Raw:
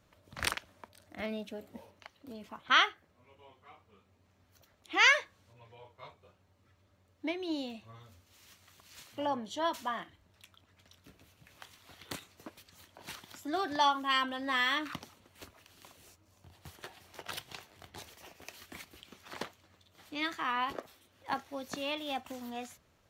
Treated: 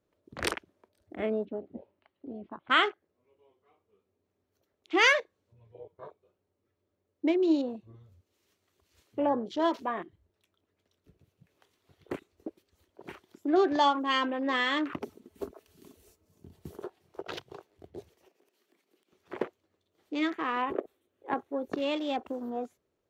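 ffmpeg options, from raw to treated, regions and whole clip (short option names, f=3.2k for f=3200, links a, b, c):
-filter_complex "[0:a]asettb=1/sr,asplit=3[a][b][c];[a]atrim=end=1.454[d];[b]atrim=start=1.45:end=2.83,asetpts=PTS-STARTPTS,afade=t=in:d=0.004:c=qsin,afade=t=out:st=1.376:d=0.004:c=qsin,lowpass=f=3.6k:w=0.5412,lowpass=f=3.6k:w=1.3066,equalizer=f=450:w=6.1:g=-11[e];[c]atrim=start=2.826[f];[d][e]acrossfade=d=0.004:c1=hsin:c2=qsin[g];[g][f]acrossfade=d=0.004:c1=qsin:c2=hsin,asettb=1/sr,asplit=3[h][i][j];[h]atrim=end=15.024[k];[i]atrim=start=15.02:end=16.84,asetpts=PTS-STARTPTS,afade=t=in:d=0.004:c=qsin,afade=t=out:st=1.816:d=0.004:c=qsin,highshelf=f=6.9k:g=9.5,acontrast=40,aecho=1:1:4.6:0.44,atrim=end_sample=80262[l];[j]atrim=start=16.836[m];[k][l]acrossfade=d=0.004:c1=hsin:c2=qsin[n];[n][m]acrossfade=d=0.004:c1=qsin:c2=hsin,asettb=1/sr,asplit=3[o][p][q];[o]atrim=end=18.284[r];[p]atrim=start=18.28:end=19.13,asetpts=PTS-STARTPTS,afade=t=in:d=0.004:c=qsin,afade=t=out:st=0.846:d=0.004:c=qsin,highpass=f=180:w=0.5412,highpass=f=180:w=1.3066,acompressor=threshold=-55dB:ratio=10:attack=3.2:release=140:knee=1:detection=peak,aeval=exprs='(mod(133*val(0)+1,2)-1)/133':c=same[s];[q]atrim=start=19.126[t];[r][s]acrossfade=d=0.004:c1=hsin:c2=qsin[u];[u][t]acrossfade=d=0.004:c1=qsin:c2=hsin,asettb=1/sr,asplit=3[v][w][x];[v]atrim=end=20.194[y];[w]atrim=start=20.19:end=21.82,asetpts=PTS-STARTPTS,afade=t=in:d=0.004:c=qsin,afade=t=out:st=1.626:d=0.004:c=qsin,equalizer=f=5.1k:w=2.4:g=-9,bandreject=f=930:w=20[z];[x]atrim=start=21.816[aa];[y][z]acrossfade=d=0.004:c1=hsin:c2=qsin[ab];[ab][aa]acrossfade=d=0.004:c1=qsin:c2=hsin,afwtdn=0.00501,equalizer=f=390:t=o:w=1.1:g=15"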